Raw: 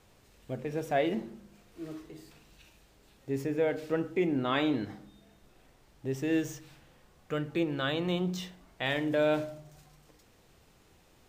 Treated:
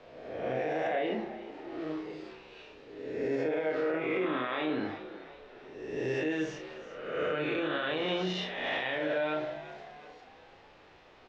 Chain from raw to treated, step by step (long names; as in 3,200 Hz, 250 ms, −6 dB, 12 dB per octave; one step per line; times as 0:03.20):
peak hold with a rise ahead of every peak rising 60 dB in 1.18 s
low-pass filter 5,700 Hz 24 dB per octave
three-way crossover with the lows and the highs turned down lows −12 dB, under 310 Hz, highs −14 dB, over 3,700 Hz
hum removal 57.16 Hz, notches 7
downward compressor, threshold −30 dBFS, peak gain reduction 9 dB
loudspeakers that aren't time-aligned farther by 11 metres −4 dB, 24 metres −12 dB
brickwall limiter −27.5 dBFS, peak gain reduction 10 dB
echo with shifted repeats 368 ms, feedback 46%, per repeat +64 Hz, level −15 dB
level +4.5 dB